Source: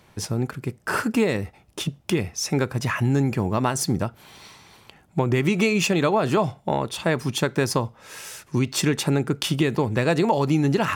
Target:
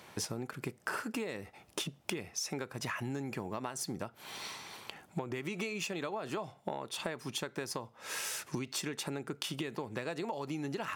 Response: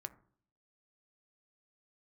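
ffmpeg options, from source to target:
-af "highpass=f=350:p=1,acompressor=threshold=0.0141:ratio=16,volume=1.41"

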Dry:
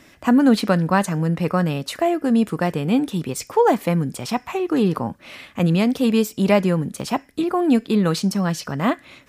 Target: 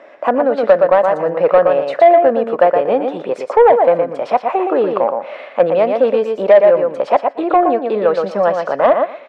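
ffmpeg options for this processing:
-af "lowpass=1700,aecho=1:1:118|236|354:0.501|0.0752|0.0113,alimiter=limit=0.266:level=0:latency=1:release=357,highpass=f=570:t=q:w=4.5,acontrast=73,volume=1.12"

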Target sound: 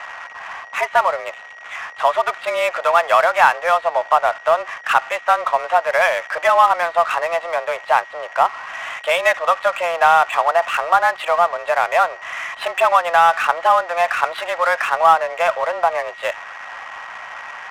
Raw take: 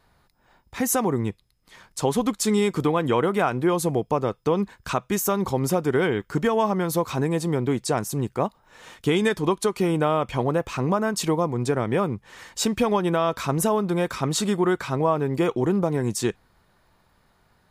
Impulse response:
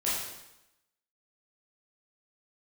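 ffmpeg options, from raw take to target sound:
-af "aeval=exprs='val(0)+0.5*0.0178*sgn(val(0))':c=same,highpass=f=520:t=q:w=0.5412,highpass=f=520:t=q:w=1.307,lowpass=f=2900:t=q:w=0.5176,lowpass=f=2900:t=q:w=0.7071,lowpass=f=2900:t=q:w=1.932,afreqshift=170,acontrast=86,aeval=exprs='val(0)+0.0112*sin(2*PI*1900*n/s)':c=same,adynamicsmooth=sensitivity=6.5:basefreq=1800,volume=1.58"

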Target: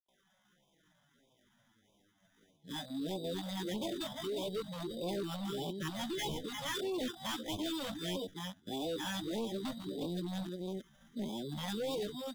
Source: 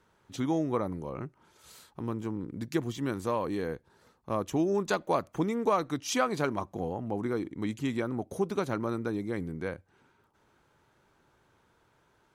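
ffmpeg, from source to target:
-filter_complex "[0:a]areverse,highpass=120,lowpass=6400,asplit=2[s0][s1];[s1]aecho=0:1:345:0.398[s2];[s0][s2]amix=inputs=2:normalize=0,acrusher=samples=17:mix=1:aa=0.000001,flanger=delay=8.3:depth=9.3:regen=-1:speed=0.18:shape=sinusoidal,asubboost=boost=4.5:cutoff=220,asetrate=72056,aresample=44100,atempo=0.612027,asplit=2[s3][s4];[s4]acompressor=threshold=0.0141:ratio=6,volume=1[s5];[s3][s5]amix=inputs=2:normalize=0,superequalizer=12b=0.355:13b=2.82,volume=20,asoftclip=hard,volume=0.0501,afftfilt=real='re*(1-between(b*sr/1024,350*pow(1600/350,0.5+0.5*sin(2*PI*1.6*pts/sr))/1.41,350*pow(1600/350,0.5+0.5*sin(2*PI*1.6*pts/sr))*1.41))':imag='im*(1-between(b*sr/1024,350*pow(1600/350,0.5+0.5*sin(2*PI*1.6*pts/sr))/1.41,350*pow(1600/350,0.5+0.5*sin(2*PI*1.6*pts/sr))*1.41))':win_size=1024:overlap=0.75,volume=0.422"

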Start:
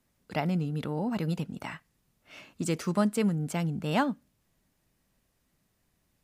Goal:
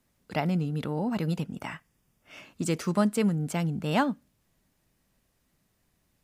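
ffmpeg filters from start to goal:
-filter_complex "[0:a]asettb=1/sr,asplit=3[s0][s1][s2];[s0]atrim=end=1.444[s3];[s1]atrim=start=1.44:end=2.46,asetpts=PTS-STARTPTS,afade=t=in:d=0.004:c=qsin,afade=t=out:st=1.016:d=0.004:c=qsin,bandreject=f=4100:w=5.2[s4];[s2]atrim=start=2.456[s5];[s3][s4]acrossfade=d=0.004:c1=hsin:c2=qsin[s6];[s6][s5]acrossfade=d=0.004:c1=qsin:c2=hsin,volume=1.19"

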